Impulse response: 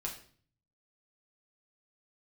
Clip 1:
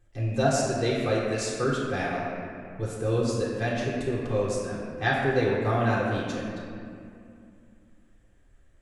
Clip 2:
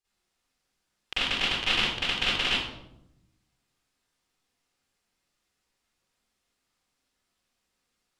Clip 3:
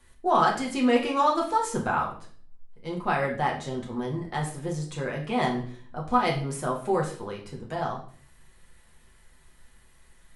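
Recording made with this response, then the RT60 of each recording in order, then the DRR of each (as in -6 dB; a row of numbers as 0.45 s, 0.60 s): 3; 2.5 s, 0.85 s, 0.50 s; -8.0 dB, -13.5 dB, -2.5 dB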